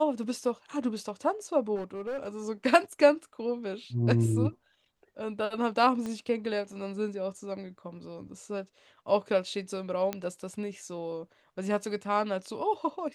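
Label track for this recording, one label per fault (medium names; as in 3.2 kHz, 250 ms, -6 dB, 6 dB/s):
1.750000	2.290000	clipped -30.5 dBFS
6.060000	6.060000	pop -24 dBFS
10.130000	10.130000	pop -17 dBFS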